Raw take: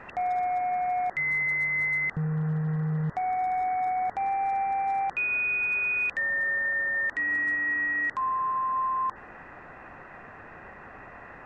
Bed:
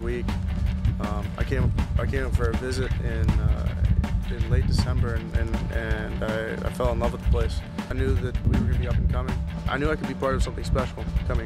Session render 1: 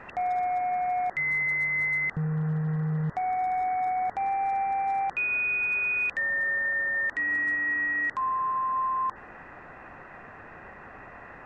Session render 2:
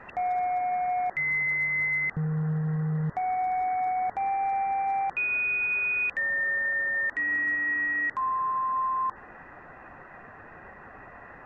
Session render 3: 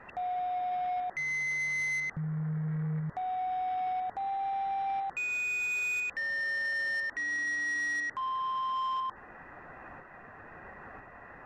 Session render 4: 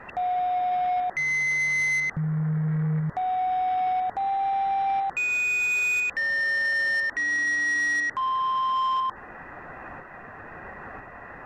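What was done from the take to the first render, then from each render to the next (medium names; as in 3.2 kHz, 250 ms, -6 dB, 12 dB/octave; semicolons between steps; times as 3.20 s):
no audible change
noise reduction 6 dB, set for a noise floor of -47 dBFS
tremolo saw up 1 Hz, depth 40%; saturation -29 dBFS, distortion -16 dB
trim +7.5 dB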